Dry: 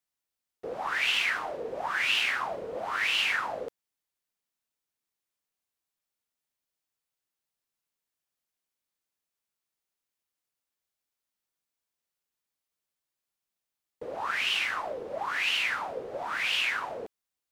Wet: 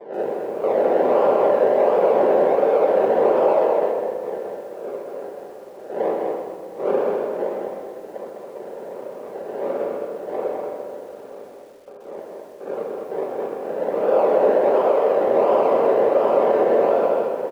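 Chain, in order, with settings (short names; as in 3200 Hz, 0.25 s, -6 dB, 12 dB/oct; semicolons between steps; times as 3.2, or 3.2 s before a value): per-bin compression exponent 0.6; wind noise 460 Hz -40 dBFS; gate with hold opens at -44 dBFS; decimation with a swept rate 31×, swing 60% 1.4 Hz; hard clip -28 dBFS, distortion -7 dB; ladder band-pass 560 Hz, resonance 60%; on a send: tapped delay 0.206/0.407 s -4.5/-17 dB; on the sum: shoebox room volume 1100 m³, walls mixed, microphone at 1.2 m; maximiser +28 dB; lo-fi delay 0.127 s, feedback 55%, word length 7-bit, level -8.5 dB; gain -7 dB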